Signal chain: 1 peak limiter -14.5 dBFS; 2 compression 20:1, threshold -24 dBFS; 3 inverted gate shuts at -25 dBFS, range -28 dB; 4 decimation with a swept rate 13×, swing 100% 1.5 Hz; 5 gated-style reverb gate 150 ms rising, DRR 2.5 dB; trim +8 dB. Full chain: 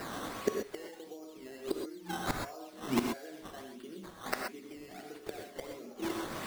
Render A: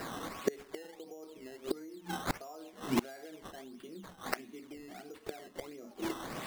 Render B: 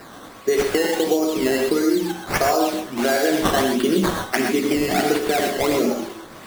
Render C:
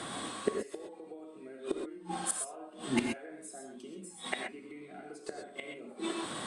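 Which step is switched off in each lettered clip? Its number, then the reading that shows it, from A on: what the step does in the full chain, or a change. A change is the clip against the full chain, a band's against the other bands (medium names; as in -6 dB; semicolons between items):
5, momentary loudness spread change +1 LU; 3, momentary loudness spread change -9 LU; 4, 8 kHz band +7.5 dB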